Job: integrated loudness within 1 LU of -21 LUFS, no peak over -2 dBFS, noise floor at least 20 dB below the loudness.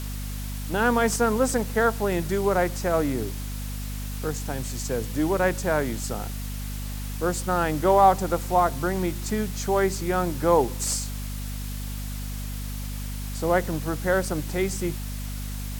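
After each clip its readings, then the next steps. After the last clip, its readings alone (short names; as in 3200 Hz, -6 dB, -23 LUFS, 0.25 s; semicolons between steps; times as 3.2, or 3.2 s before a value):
hum 50 Hz; harmonics up to 250 Hz; hum level -30 dBFS; noise floor -32 dBFS; noise floor target -46 dBFS; loudness -26.0 LUFS; peak -6.0 dBFS; loudness target -21.0 LUFS
-> de-hum 50 Hz, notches 5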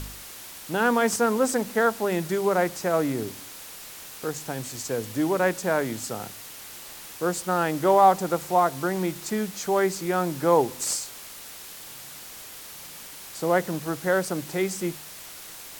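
hum none; noise floor -42 dBFS; noise floor target -45 dBFS
-> noise print and reduce 6 dB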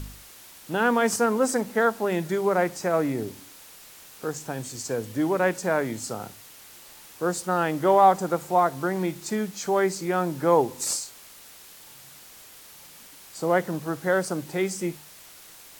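noise floor -48 dBFS; loudness -25.0 LUFS; peak -6.5 dBFS; loudness target -21.0 LUFS
-> gain +4 dB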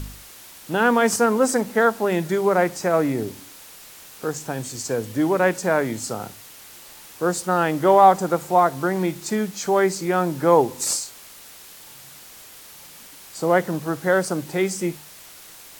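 loudness -21.0 LUFS; peak -2.5 dBFS; noise floor -44 dBFS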